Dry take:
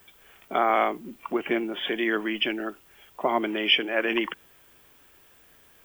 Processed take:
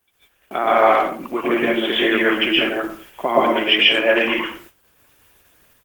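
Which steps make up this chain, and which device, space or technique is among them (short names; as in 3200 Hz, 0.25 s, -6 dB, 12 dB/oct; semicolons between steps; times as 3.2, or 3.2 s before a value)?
high shelf 3100 Hz +3.5 dB; speakerphone in a meeting room (reverb RT60 0.45 s, pre-delay 0.115 s, DRR -5.5 dB; speakerphone echo 90 ms, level -13 dB; AGC gain up to 3 dB; gate -43 dBFS, range -15 dB; gain +1.5 dB; Opus 16 kbps 48000 Hz)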